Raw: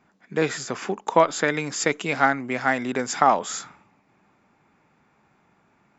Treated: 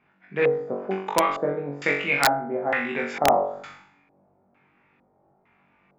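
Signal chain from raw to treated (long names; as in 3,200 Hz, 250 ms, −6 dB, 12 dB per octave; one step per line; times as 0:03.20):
flutter between parallel walls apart 3.6 metres, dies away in 0.58 s
auto-filter low-pass square 1.1 Hz 630–2,500 Hz
wrap-around overflow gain 2 dB
level −6 dB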